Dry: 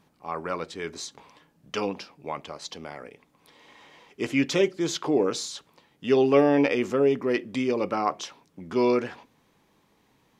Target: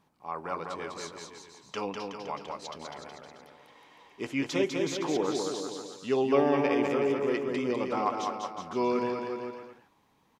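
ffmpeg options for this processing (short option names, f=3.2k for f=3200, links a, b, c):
-filter_complex "[0:a]equalizer=f=940:w=1.9:g=5.5,asplit=2[a][b];[b]aecho=0:1:200|370|514.5|637.3|741.7:0.631|0.398|0.251|0.158|0.1[c];[a][c]amix=inputs=2:normalize=0,volume=-7dB"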